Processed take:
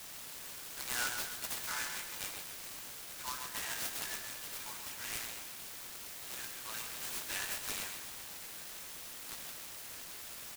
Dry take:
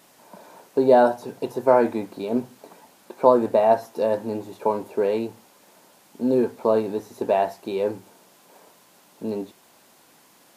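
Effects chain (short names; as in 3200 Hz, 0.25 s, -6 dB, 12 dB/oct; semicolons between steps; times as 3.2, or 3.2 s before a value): steep high-pass 1900 Hz 36 dB/oct; bell 2500 Hz -14.5 dB 1.5 oct; doubler 15 ms -5.5 dB; feedback echo 0.131 s, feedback 46%, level -6.5 dB; noise-modulated delay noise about 4700 Hz, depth 0.073 ms; gain +13.5 dB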